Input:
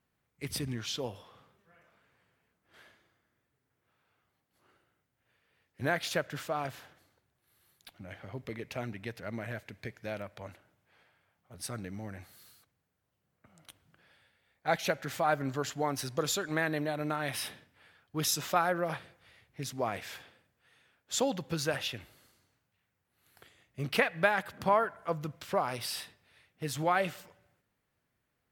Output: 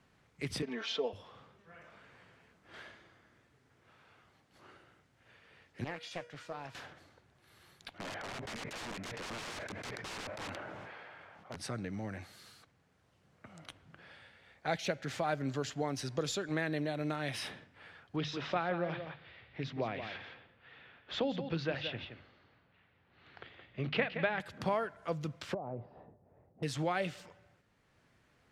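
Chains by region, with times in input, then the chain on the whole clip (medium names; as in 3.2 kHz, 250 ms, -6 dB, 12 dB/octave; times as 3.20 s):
0.62–1.13 s: band-pass 410–4000 Hz + peaking EQ 520 Hz +5 dB 1.6 oct + comb 4.5 ms, depth 95%
5.84–6.75 s: feedback comb 480 Hz, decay 0.39 s, mix 80% + loudspeaker Doppler distortion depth 0.81 ms
7.98–11.56 s: overdrive pedal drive 16 dB, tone 1 kHz, clips at -22.5 dBFS + integer overflow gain 39.5 dB + decay stretcher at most 25 dB/s
18.16–24.40 s: low-pass 3.7 kHz 24 dB/octave + hum notches 50/100/150/200/250 Hz + delay 171 ms -10.5 dB
25.54–26.63 s: Chebyshev low-pass 720 Hz, order 3 + compression 4:1, threshold -35 dBFS
whole clip: low-pass 6.8 kHz 12 dB/octave; dynamic bell 1.1 kHz, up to -7 dB, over -44 dBFS, Q 0.92; three bands compressed up and down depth 40%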